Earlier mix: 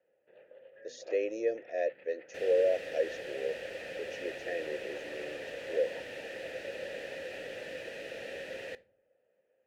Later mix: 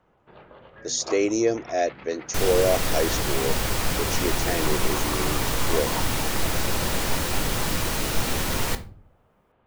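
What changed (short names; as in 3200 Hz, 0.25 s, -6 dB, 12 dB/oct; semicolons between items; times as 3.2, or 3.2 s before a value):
second sound: send +9.0 dB; master: remove vowel filter e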